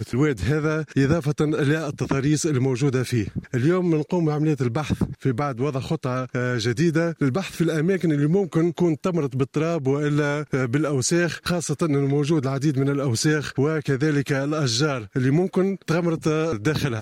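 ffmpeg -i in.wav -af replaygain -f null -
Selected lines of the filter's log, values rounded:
track_gain = +4.1 dB
track_peak = 0.294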